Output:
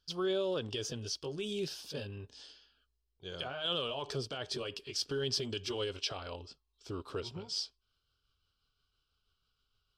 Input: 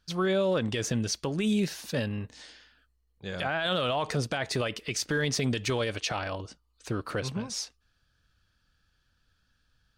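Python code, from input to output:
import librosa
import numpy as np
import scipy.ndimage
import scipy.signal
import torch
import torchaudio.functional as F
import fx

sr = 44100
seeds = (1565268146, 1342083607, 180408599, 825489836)

y = fx.pitch_glide(x, sr, semitones=-2.5, runs='starting unshifted')
y = fx.graphic_eq_31(y, sr, hz=(200, 400, 2000, 3150, 5000), db=(-8, 7, -11, 9, 10))
y = y * 10.0 ** (-9.0 / 20.0)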